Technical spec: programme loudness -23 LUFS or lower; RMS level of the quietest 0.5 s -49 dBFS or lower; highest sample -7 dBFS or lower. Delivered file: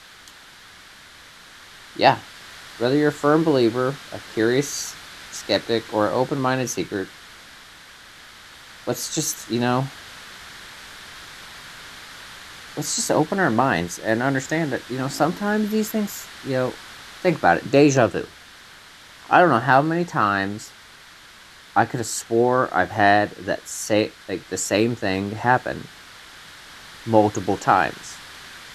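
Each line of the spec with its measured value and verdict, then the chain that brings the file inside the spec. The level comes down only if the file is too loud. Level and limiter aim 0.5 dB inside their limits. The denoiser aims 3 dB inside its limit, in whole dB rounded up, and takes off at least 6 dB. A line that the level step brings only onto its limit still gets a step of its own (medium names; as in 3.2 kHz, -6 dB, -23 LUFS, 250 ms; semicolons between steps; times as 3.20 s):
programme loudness -21.5 LUFS: fail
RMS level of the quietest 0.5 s -46 dBFS: fail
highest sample -2.0 dBFS: fail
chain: noise reduction 6 dB, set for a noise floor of -46 dBFS; trim -2 dB; peak limiter -7.5 dBFS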